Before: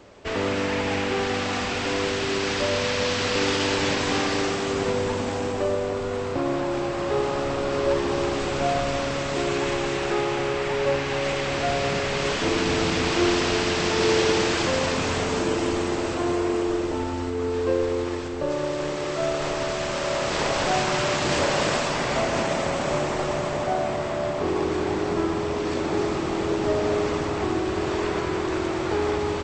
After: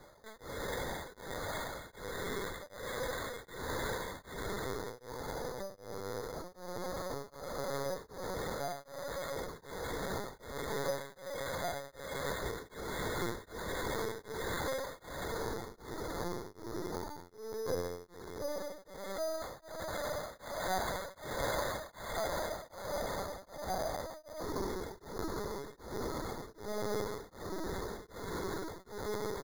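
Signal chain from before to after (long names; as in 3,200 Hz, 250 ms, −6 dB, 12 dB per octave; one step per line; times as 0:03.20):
high-pass filter 230 Hz 6 dB per octave
low-shelf EQ 370 Hz −6 dB
reversed playback
upward compression, threshold −32 dBFS
reversed playback
flanger 0.81 Hz, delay 4.4 ms, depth 9.2 ms, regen −75%
linear-phase brick-wall low-pass 2,200 Hz
repeating echo 135 ms, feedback 23%, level −17.5 dB
linear-prediction vocoder at 8 kHz pitch kept
bad sample-rate conversion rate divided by 8×, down none, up hold
tremolo along a rectified sine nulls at 1.3 Hz
level −4 dB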